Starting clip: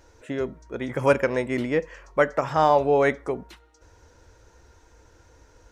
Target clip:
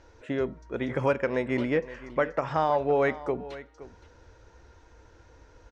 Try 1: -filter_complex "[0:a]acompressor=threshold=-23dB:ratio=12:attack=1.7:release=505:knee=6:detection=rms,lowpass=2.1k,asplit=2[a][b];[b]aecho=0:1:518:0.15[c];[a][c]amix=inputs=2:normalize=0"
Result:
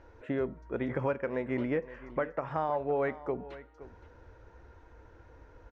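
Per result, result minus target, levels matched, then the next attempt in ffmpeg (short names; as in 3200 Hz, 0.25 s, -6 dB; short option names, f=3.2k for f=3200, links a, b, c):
4000 Hz band -6.5 dB; compressor: peak gain reduction +6.5 dB
-filter_complex "[0:a]acompressor=threshold=-23dB:ratio=12:attack=1.7:release=505:knee=6:detection=rms,lowpass=4.6k,asplit=2[a][b];[b]aecho=0:1:518:0.15[c];[a][c]amix=inputs=2:normalize=0"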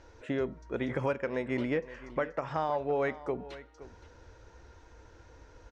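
compressor: peak gain reduction +6.5 dB
-filter_complex "[0:a]acompressor=threshold=-16dB:ratio=12:attack=1.7:release=505:knee=6:detection=rms,lowpass=4.6k,asplit=2[a][b];[b]aecho=0:1:518:0.15[c];[a][c]amix=inputs=2:normalize=0"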